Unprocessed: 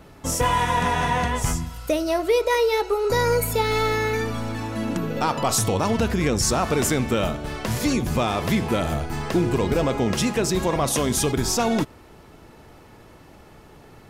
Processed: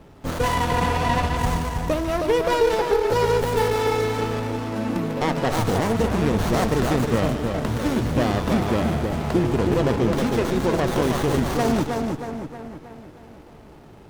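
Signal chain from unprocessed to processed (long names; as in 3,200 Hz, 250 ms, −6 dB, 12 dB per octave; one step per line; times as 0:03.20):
echo with a time of its own for lows and highs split 1,600 Hz, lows 316 ms, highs 148 ms, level −4 dB
windowed peak hold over 17 samples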